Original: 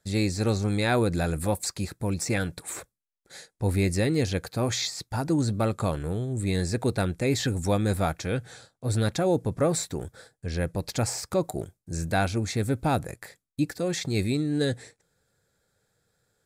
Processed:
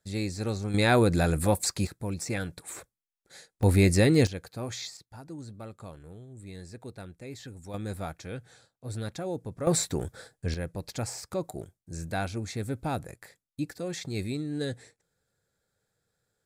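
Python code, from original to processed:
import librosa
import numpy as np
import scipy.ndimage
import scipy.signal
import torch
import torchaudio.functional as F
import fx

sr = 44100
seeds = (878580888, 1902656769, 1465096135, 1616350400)

y = fx.gain(x, sr, db=fx.steps((0.0, -6.0), (0.74, 2.0), (1.87, -5.0), (3.63, 3.5), (4.27, -9.0), (4.97, -17.0), (7.74, -10.0), (9.67, 2.0), (10.54, -6.5)))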